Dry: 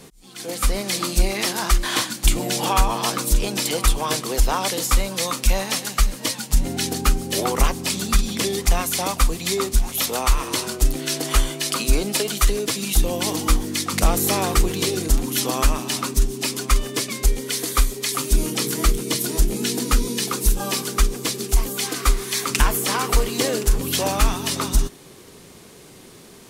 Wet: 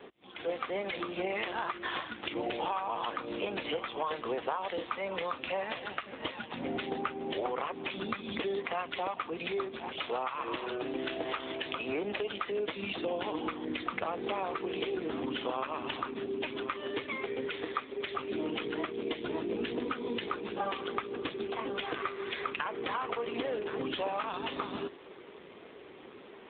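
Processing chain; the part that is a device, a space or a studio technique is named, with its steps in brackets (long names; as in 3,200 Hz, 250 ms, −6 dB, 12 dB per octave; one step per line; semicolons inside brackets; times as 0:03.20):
voicemail (band-pass filter 360–3,300 Hz; downward compressor 10 to 1, threshold −30 dBFS, peak gain reduction 14 dB; level +1.5 dB; AMR narrowband 7.4 kbit/s 8,000 Hz)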